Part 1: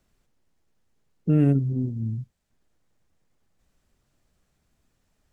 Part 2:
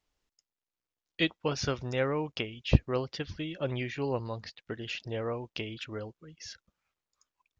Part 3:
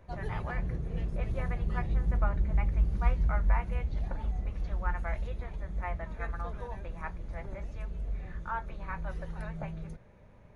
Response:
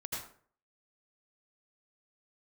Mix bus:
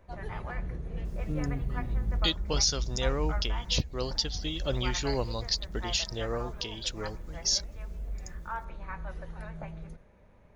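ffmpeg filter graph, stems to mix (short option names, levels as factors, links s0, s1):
-filter_complex "[0:a]volume=0.178[s0];[1:a]aexciter=amount=10.4:drive=3.3:freq=3600,adelay=1050,volume=1.06[s1];[2:a]equalizer=f=120:t=o:w=0.89:g=-5,volume=0.794,asplit=2[s2][s3];[s3]volume=0.126[s4];[3:a]atrim=start_sample=2205[s5];[s4][s5]afir=irnorm=-1:irlink=0[s6];[s0][s1][s2][s6]amix=inputs=4:normalize=0,alimiter=limit=0.178:level=0:latency=1:release=427"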